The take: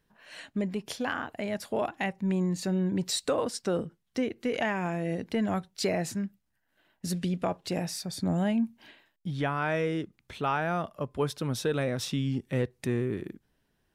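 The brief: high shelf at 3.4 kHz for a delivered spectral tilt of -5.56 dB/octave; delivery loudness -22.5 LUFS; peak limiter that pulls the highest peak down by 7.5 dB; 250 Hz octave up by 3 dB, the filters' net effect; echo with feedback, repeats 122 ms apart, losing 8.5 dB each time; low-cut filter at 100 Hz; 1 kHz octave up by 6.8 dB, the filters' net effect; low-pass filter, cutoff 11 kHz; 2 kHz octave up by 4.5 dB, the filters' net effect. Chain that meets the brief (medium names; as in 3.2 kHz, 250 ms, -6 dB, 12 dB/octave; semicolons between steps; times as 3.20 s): high-pass 100 Hz; low-pass 11 kHz; peaking EQ 250 Hz +4 dB; peaking EQ 1 kHz +8.5 dB; peaking EQ 2 kHz +4 dB; treble shelf 3.4 kHz -5.5 dB; peak limiter -18 dBFS; feedback delay 122 ms, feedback 38%, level -8.5 dB; trim +7 dB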